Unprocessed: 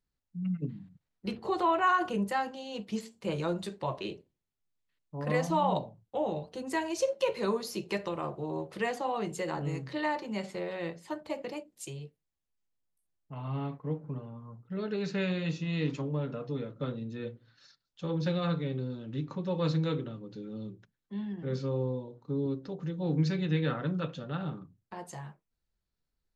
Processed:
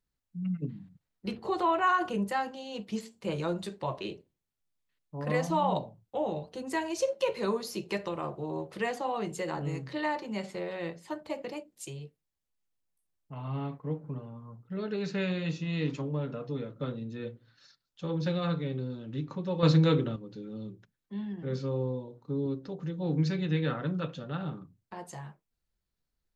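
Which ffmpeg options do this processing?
ffmpeg -i in.wav -filter_complex "[0:a]asplit=3[link_01][link_02][link_03];[link_01]atrim=end=19.632[link_04];[link_02]atrim=start=19.628:end=20.162,asetpts=PTS-STARTPTS,volume=7dB[link_05];[link_03]atrim=start=20.158[link_06];[link_04][link_05]acrossfade=duration=0.004:curve1=hsin:curve2=hsin[link_07];[link_07][link_06]acrossfade=duration=0.004:curve1=hsin:curve2=hsin" out.wav

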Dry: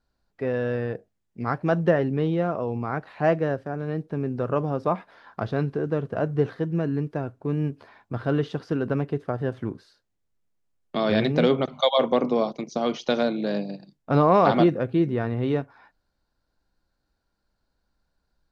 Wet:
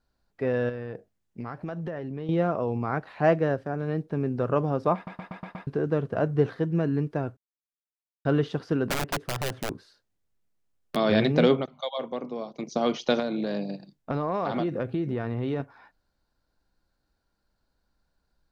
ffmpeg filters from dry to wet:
ffmpeg -i in.wav -filter_complex "[0:a]asettb=1/sr,asplit=3[link_01][link_02][link_03];[link_01]atrim=end=0.694[link_04];[link_02]atrim=start=0.69:end=2.29,asetpts=PTS-STARTPTS,afade=type=in:duration=0.004:curve=qsin,afade=type=out:start_time=1.596:duration=0.004:curve=qsin,acompressor=threshold=-30dB:ratio=10:attack=3.2:release=140:knee=1:detection=peak[link_05];[link_03]atrim=start=2.286[link_06];[link_04][link_05]acrossfade=duration=0.004:curve1=hsin:curve2=qsin[link_07];[link_07][link_06]acrossfade=duration=0.004:curve1=qsin:curve2=hsin,asettb=1/sr,asplit=3[link_08][link_09][link_10];[link_08]atrim=end=8.864[link_11];[link_09]atrim=start=8.86:end=10.96,asetpts=PTS-STARTPTS,afade=type=in:duration=0.004:curve=qsin,afade=type=out:start_time=2.096:duration=0.004:curve=qsin,aeval=exprs='(mod(12.6*val(0)+1,2)-1)/12.6':channel_layout=same[link_12];[link_10]atrim=start=10.956[link_13];[link_11][link_12]acrossfade=duration=0.004:curve1=hsin:curve2=qsin[link_14];[link_14][link_13]acrossfade=duration=0.004:curve1=qsin:curve2=hsin,asettb=1/sr,asplit=3[link_15][link_16][link_17];[link_15]atrim=end=13.194[link_18];[link_16]atrim=start=13.19:end=15.6,asetpts=PTS-STARTPTS,afade=type=in:duration=0.004:curve=qsin,afade=type=out:start_time=2.406:duration=0.004:curve=qsin,acompressor=threshold=-24dB:ratio=6:attack=3.2:release=140:knee=1:detection=peak[link_19];[link_17]atrim=start=15.596[link_20];[link_18][link_19]acrossfade=duration=0.004:curve1=hsin:curve2=qsin[link_21];[link_21][link_20]acrossfade=duration=0.004:curve1=qsin:curve2=hsin,asplit=11[link_22][link_23][link_24][link_25][link_26][link_27][link_28][link_29][link_30][link_31][link_32];[link_22]atrim=end=5.072[link_33];[link_23]atrim=start=4.948:end=5.072[link_34];[link_24]atrim=start=4.948:end=5.072[link_35];[link_25]atrim=start=4.948:end=5.072[link_36];[link_26]atrim=start=4.948:end=5.072[link_37];[link_27]atrim=start=4.948:end=5.072[link_38];[link_28]atrim=start=5.668:end=7.37,asetpts=PTS-STARTPTS,afade=type=out:start_time=1.698:duration=0.004:curve=hsin[link_39];[link_29]atrim=start=7.37:end=8.25,asetpts=PTS-STARTPTS,volume=0[link_40];[link_30]atrim=start=8.25:end=11.68,asetpts=PTS-STARTPTS,afade=type=in:duration=0.004:curve=hsin,afade=type=out:start_time=3.28:duration=0.15:silence=0.266073[link_41];[link_31]atrim=start=11.68:end=12.51,asetpts=PTS-STARTPTS,volume=-11.5dB[link_42];[link_32]atrim=start=12.51,asetpts=PTS-STARTPTS,afade=type=in:duration=0.15:silence=0.266073[link_43];[link_33][link_34]acrossfade=duration=0.004:curve1=hsin:curve2=hsin[link_44];[link_44][link_35]acrossfade=duration=0.004:curve1=hsin:curve2=hsin[link_45];[link_45][link_36]acrossfade=duration=0.004:curve1=hsin:curve2=hsin[link_46];[link_46][link_37]acrossfade=duration=0.004:curve1=hsin:curve2=hsin[link_47];[link_47][link_38]acrossfade=duration=0.004:curve1=hsin:curve2=hsin[link_48];[link_39][link_40][link_41][link_42][link_43]concat=n=5:v=0:a=1[link_49];[link_48][link_49]acrossfade=duration=0.004:curve1=hsin:curve2=hsin" out.wav

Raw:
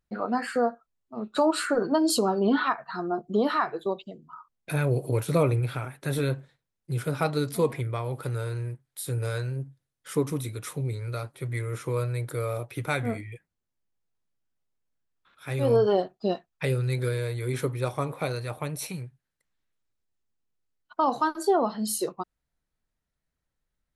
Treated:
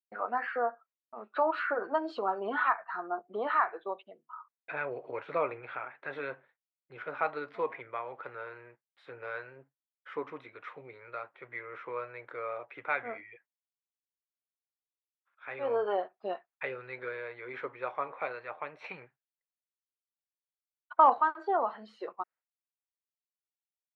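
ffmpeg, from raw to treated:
ffmpeg -i in.wav -filter_complex "[0:a]asettb=1/sr,asplit=3[link_01][link_02][link_03];[link_01]atrim=end=18.844[link_04];[link_02]atrim=start=18.84:end=21.14,asetpts=PTS-STARTPTS,afade=type=in:duration=0.004:curve=qsin,afade=type=out:start_time=2.296:duration=0.004:curve=qsin,acontrast=51[link_05];[link_03]atrim=start=21.136[link_06];[link_04][link_05]acrossfade=duration=0.004:curve1=hsin:curve2=qsin[link_07];[link_07][link_06]acrossfade=duration=0.004:curve1=qsin:curve2=hsin,highpass=750,agate=range=-33dB:threshold=-54dB:ratio=3:detection=peak,lowpass=frequency=2300:width=0.5412,lowpass=frequency=2300:width=1.3066" out.wav

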